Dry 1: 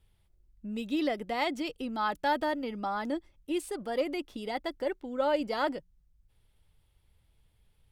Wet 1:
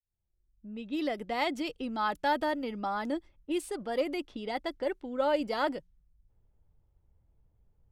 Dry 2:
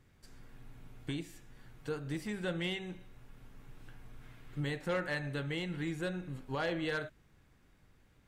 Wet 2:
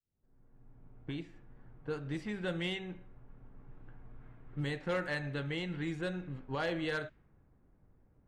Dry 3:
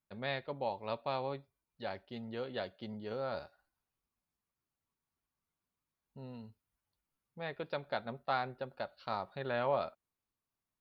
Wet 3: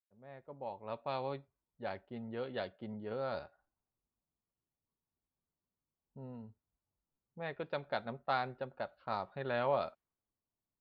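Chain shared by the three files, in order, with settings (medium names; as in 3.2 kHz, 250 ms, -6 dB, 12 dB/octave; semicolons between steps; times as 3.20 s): fade-in on the opening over 1.38 s; level-controlled noise filter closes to 770 Hz, open at -30 dBFS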